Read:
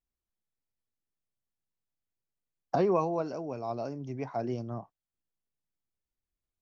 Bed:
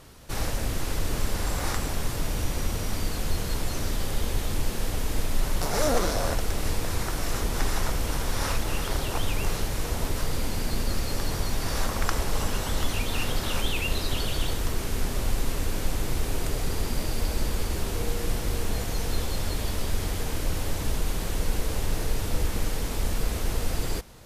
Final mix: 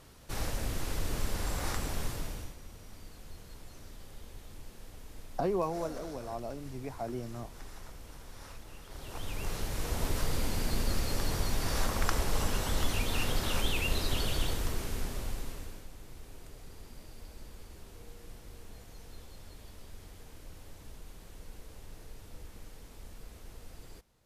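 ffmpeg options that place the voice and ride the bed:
-filter_complex "[0:a]adelay=2650,volume=-4.5dB[a];[1:a]volume=11.5dB,afade=t=out:st=2.03:d=0.53:silence=0.177828,afade=t=in:st=8.88:d=1.24:silence=0.133352,afade=t=out:st=14.33:d=1.54:silence=0.125893[b];[a][b]amix=inputs=2:normalize=0"

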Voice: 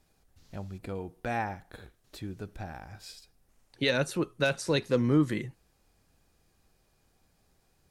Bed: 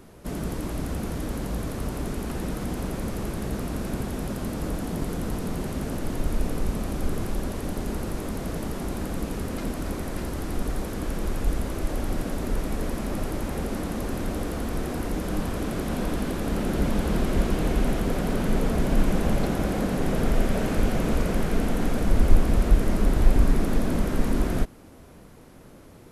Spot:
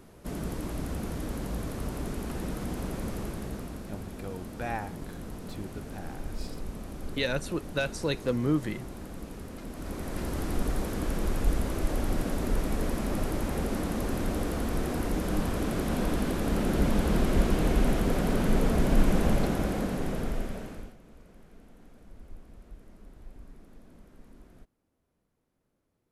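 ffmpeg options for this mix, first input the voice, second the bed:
-filter_complex "[0:a]adelay=3350,volume=-2.5dB[a];[1:a]volume=6dB,afade=t=out:st=3.13:d=0.72:silence=0.446684,afade=t=in:st=9.68:d=0.7:silence=0.316228,afade=t=out:st=19.24:d=1.72:silence=0.0375837[b];[a][b]amix=inputs=2:normalize=0"

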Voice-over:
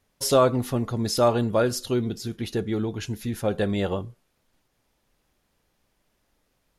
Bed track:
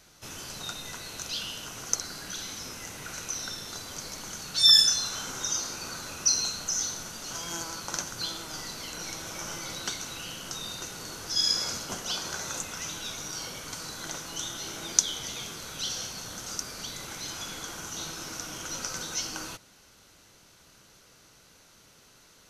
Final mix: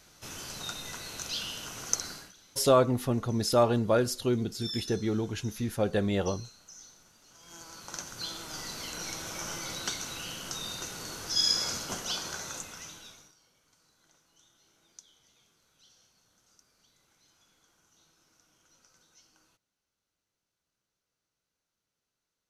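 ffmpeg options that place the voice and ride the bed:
-filter_complex "[0:a]adelay=2350,volume=-3dB[a];[1:a]volume=19.5dB,afade=t=out:st=2.08:d=0.25:silence=0.1,afade=t=in:st=7.37:d=1.42:silence=0.0944061,afade=t=out:st=11.97:d=1.38:silence=0.0354813[b];[a][b]amix=inputs=2:normalize=0"

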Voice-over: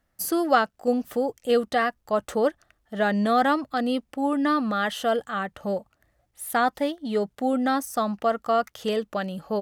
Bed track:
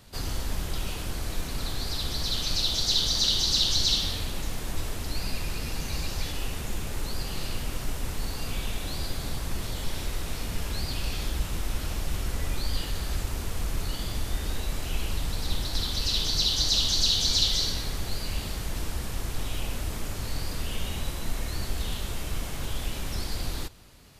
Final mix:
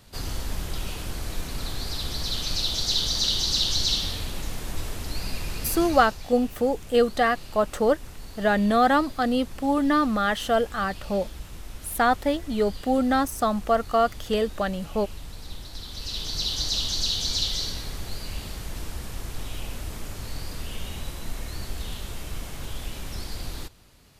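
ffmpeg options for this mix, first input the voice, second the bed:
-filter_complex "[0:a]adelay=5450,volume=1.5dB[a];[1:a]volume=7dB,afade=t=out:st=5.85:d=0.33:silence=0.334965,afade=t=in:st=15.83:d=0.68:silence=0.446684[b];[a][b]amix=inputs=2:normalize=0"

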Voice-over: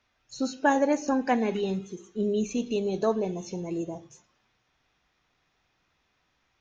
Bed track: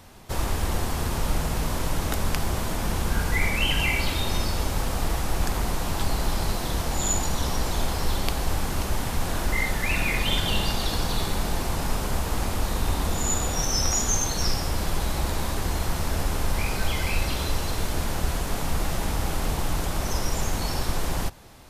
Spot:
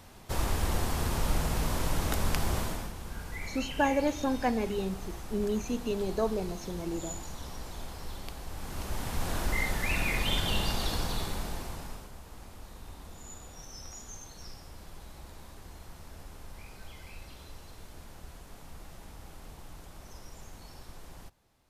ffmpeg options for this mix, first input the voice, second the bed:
-filter_complex "[0:a]adelay=3150,volume=-4dB[a];[1:a]volume=7dB,afade=t=out:st=2.58:d=0.34:silence=0.251189,afade=t=in:st=8.52:d=0.8:silence=0.298538,afade=t=out:st=10.87:d=1.24:silence=0.149624[b];[a][b]amix=inputs=2:normalize=0"

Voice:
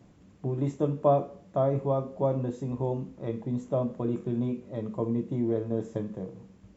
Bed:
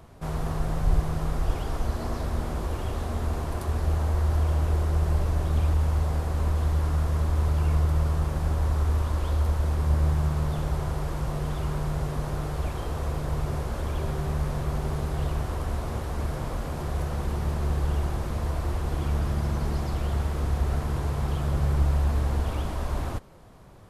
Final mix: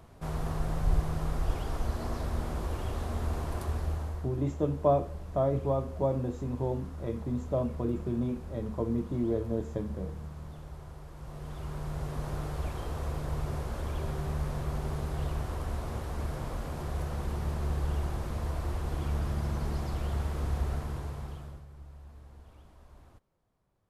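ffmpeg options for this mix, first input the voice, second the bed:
-filter_complex "[0:a]adelay=3800,volume=-2dB[a];[1:a]volume=8dB,afade=t=out:st=3.62:d=0.68:silence=0.223872,afade=t=in:st=11.13:d=1.19:silence=0.251189,afade=t=out:st=20.58:d=1.07:silence=0.0891251[b];[a][b]amix=inputs=2:normalize=0"

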